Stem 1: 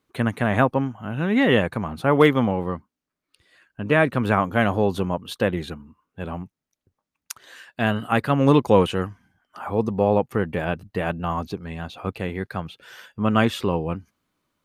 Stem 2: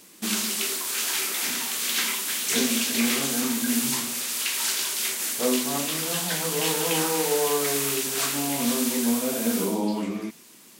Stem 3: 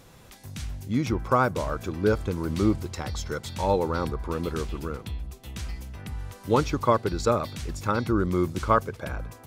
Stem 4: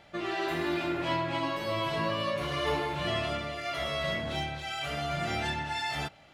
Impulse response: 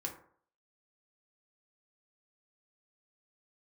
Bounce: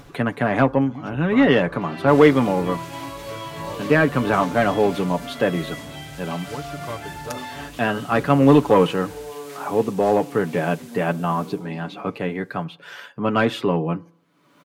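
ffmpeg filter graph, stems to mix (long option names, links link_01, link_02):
-filter_complex "[0:a]highpass=frequency=140:width=0.5412,highpass=frequency=140:width=1.3066,asoftclip=type=tanh:threshold=-8.5dB,volume=2dB,asplit=2[link_01][link_02];[link_02]volume=-15.5dB[link_03];[1:a]adelay=1850,volume=-13.5dB[link_04];[2:a]volume=-12.5dB[link_05];[3:a]adelay=1600,volume=-3dB[link_06];[4:a]atrim=start_sample=2205[link_07];[link_03][link_07]afir=irnorm=-1:irlink=0[link_08];[link_01][link_04][link_05][link_06][link_08]amix=inputs=5:normalize=0,acompressor=mode=upward:threshold=-31dB:ratio=2.5,highshelf=frequency=4800:gain=-10,aecho=1:1:7:0.46"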